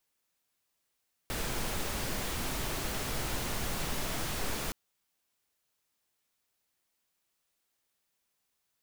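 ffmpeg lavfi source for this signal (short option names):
-f lavfi -i "anoisesrc=c=pink:a=0.102:d=3.42:r=44100:seed=1"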